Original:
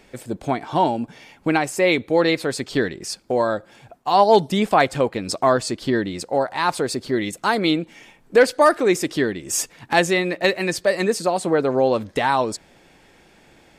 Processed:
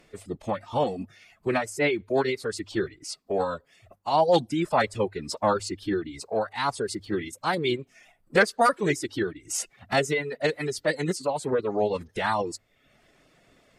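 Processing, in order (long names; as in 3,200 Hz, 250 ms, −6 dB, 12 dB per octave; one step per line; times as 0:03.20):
phase-vocoder pitch shift with formants kept −4 semitones
reverb reduction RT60 0.65 s
mains-hum notches 50/100 Hz
level −5.5 dB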